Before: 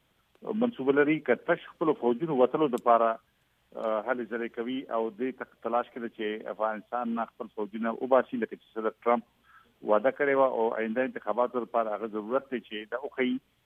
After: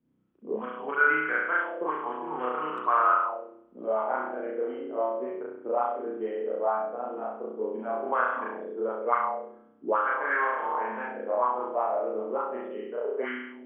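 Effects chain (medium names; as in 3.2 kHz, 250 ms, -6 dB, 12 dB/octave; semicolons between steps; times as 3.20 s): peaking EQ 660 Hz -5.5 dB 0.88 oct; spring tank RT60 1 s, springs 32 ms, chirp 70 ms, DRR -6 dB; auto-wah 250–1400 Hz, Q 3.5, up, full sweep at -18 dBFS; trim +4.5 dB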